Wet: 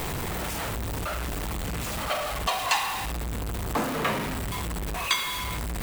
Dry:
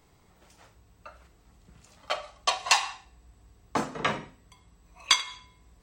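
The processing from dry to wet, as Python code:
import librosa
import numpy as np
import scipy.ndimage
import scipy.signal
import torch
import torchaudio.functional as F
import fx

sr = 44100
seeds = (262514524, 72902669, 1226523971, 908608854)

y = x + 0.5 * 10.0 ** (-21.0 / 20.0) * np.sign(x)
y = fx.peak_eq(y, sr, hz=5700.0, db=-6.0, octaves=1.1)
y = y * librosa.db_to_amplitude(-3.5)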